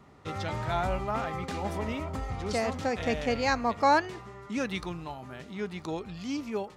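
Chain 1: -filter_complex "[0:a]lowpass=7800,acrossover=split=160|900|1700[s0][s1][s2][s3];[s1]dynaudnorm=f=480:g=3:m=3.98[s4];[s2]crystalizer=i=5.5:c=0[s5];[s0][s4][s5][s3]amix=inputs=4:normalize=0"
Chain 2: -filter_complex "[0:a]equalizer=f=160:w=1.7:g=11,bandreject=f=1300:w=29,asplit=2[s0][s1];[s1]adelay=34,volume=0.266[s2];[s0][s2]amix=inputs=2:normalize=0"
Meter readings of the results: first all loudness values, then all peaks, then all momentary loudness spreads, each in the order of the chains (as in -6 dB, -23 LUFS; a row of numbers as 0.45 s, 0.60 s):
-22.0 LUFS, -29.0 LUFS; -4.0 dBFS, -11.5 dBFS; 15 LU, 9 LU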